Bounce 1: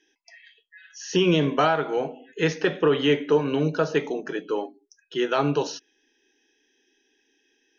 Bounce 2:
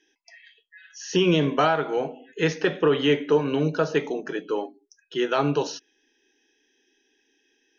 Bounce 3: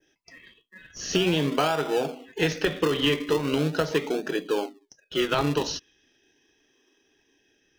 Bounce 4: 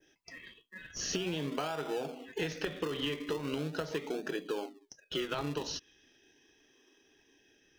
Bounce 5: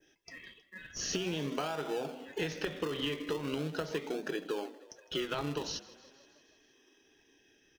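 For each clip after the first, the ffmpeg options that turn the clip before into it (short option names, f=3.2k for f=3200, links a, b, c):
-af anull
-filter_complex "[0:a]asplit=2[a][b];[b]acrusher=samples=40:mix=1:aa=0.000001:lfo=1:lforange=40:lforate=0.4,volume=-8.5dB[c];[a][c]amix=inputs=2:normalize=0,acompressor=threshold=-20dB:ratio=6,adynamicequalizer=threshold=0.00355:dfrequency=3700:dqfactor=0.91:tfrequency=3700:tqfactor=0.91:attack=5:release=100:ratio=0.375:range=3:mode=boostabove:tftype=bell"
-af "acompressor=threshold=-34dB:ratio=4"
-filter_complex "[0:a]asplit=7[a][b][c][d][e][f][g];[b]adelay=158,afreqshift=31,volume=-19.5dB[h];[c]adelay=316,afreqshift=62,volume=-23.4dB[i];[d]adelay=474,afreqshift=93,volume=-27.3dB[j];[e]adelay=632,afreqshift=124,volume=-31.1dB[k];[f]adelay=790,afreqshift=155,volume=-35dB[l];[g]adelay=948,afreqshift=186,volume=-38.9dB[m];[a][h][i][j][k][l][m]amix=inputs=7:normalize=0"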